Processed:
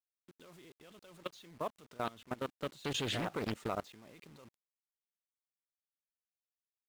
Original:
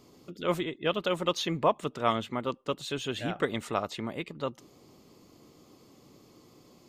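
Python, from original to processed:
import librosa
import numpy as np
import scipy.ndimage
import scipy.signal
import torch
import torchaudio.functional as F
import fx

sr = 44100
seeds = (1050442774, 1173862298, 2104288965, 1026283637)

y = fx.doppler_pass(x, sr, speed_mps=7, closest_m=1.7, pass_at_s=3.16)
y = fx.level_steps(y, sr, step_db=21)
y = fx.quant_companded(y, sr, bits=6)
y = fx.doppler_dist(y, sr, depth_ms=0.64)
y = F.gain(torch.from_numpy(y), 6.5).numpy()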